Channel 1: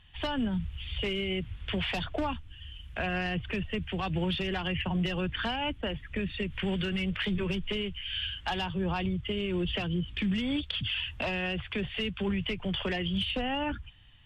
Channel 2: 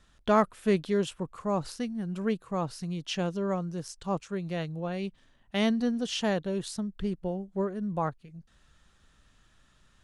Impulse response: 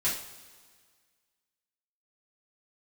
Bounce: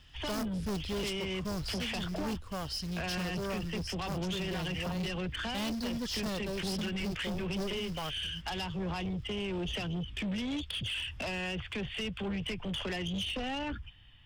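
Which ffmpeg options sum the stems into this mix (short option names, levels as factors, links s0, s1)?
-filter_complex "[0:a]volume=0.944[s0];[1:a]equalizer=f=4100:w=1.9:g=4.5,acrossover=split=470[s1][s2];[s1]aeval=exprs='val(0)*(1-0.5/2+0.5/2*cos(2*PI*1.3*n/s))':c=same[s3];[s2]aeval=exprs='val(0)*(1-0.5/2-0.5/2*cos(2*PI*1.3*n/s))':c=same[s4];[s3][s4]amix=inputs=2:normalize=0,acrusher=bits=4:mode=log:mix=0:aa=0.000001,volume=1.06[s5];[s0][s5]amix=inputs=2:normalize=0,equalizer=f=5100:w=4.9:g=13.5,acrossover=split=400|3000[s6][s7][s8];[s7]acompressor=threshold=0.0251:ratio=6[s9];[s6][s9][s8]amix=inputs=3:normalize=0,asoftclip=type=tanh:threshold=0.0282"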